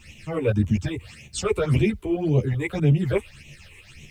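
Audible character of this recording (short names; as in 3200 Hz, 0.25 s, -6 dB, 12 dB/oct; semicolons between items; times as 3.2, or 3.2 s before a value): phasing stages 8, 1.8 Hz, lowest notch 180–1500 Hz; tremolo saw up 7.9 Hz, depth 50%; a quantiser's noise floor 12-bit, dither none; a shimmering, thickened sound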